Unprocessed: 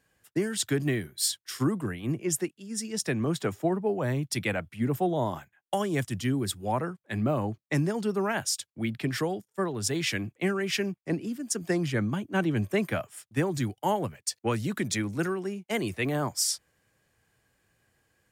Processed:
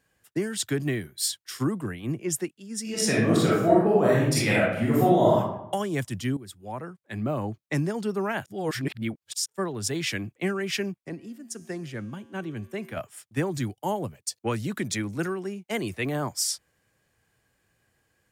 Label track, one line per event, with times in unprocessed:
2.820000	5.370000	reverb throw, RT60 0.81 s, DRR -7.5 dB
6.370000	7.510000	fade in, from -15 dB
8.460000	9.460000	reverse
11.090000	12.970000	feedback comb 76 Hz, decay 1.6 s, harmonics odd
13.730000	14.430000	peaking EQ 1.8 kHz -8 dB 1.4 oct

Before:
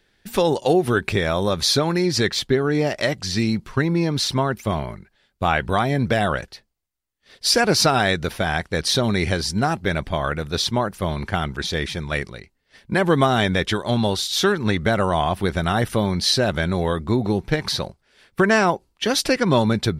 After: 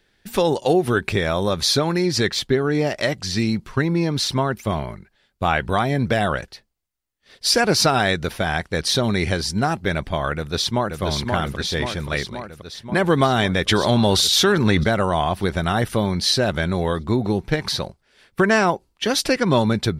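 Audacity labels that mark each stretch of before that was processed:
10.360000	11.020000	echo throw 530 ms, feedback 70%, level -4.5 dB
13.680000	14.840000	level flattener amount 70%

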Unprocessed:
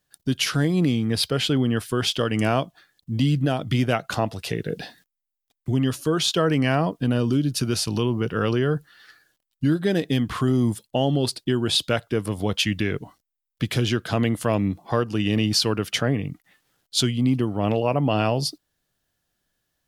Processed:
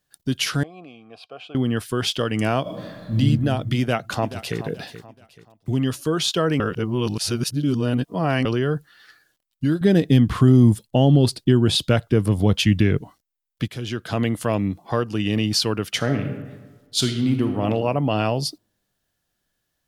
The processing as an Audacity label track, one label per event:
0.630000	1.550000	vowel filter a
2.620000	3.160000	reverb throw, RT60 1.8 s, DRR -11 dB
3.790000	4.580000	echo throw 430 ms, feedback 35%, level -13 dB
6.600000	8.450000	reverse
9.810000	13.010000	bass shelf 300 Hz +11 dB
13.680000	14.220000	fade in, from -13.5 dB
15.960000	17.620000	reverb throw, RT60 1.3 s, DRR 5.5 dB

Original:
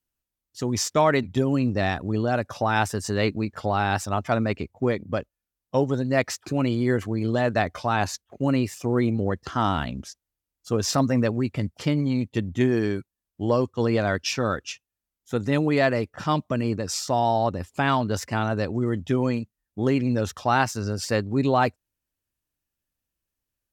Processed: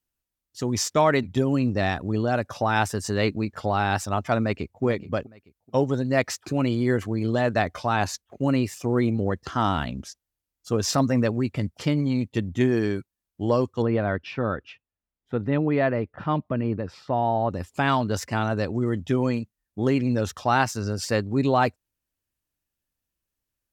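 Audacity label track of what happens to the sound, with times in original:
4.400000	4.830000	echo throw 430 ms, feedback 30%, level -15 dB
13.820000	17.500000	distance through air 450 m

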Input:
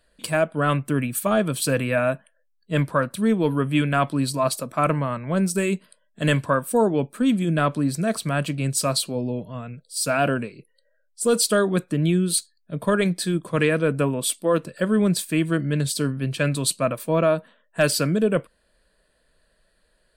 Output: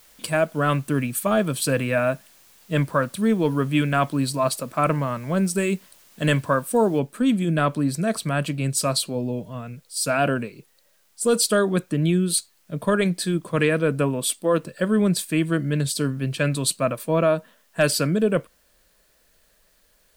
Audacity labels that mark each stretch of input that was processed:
6.990000	6.990000	noise floor step -54 dB -64 dB

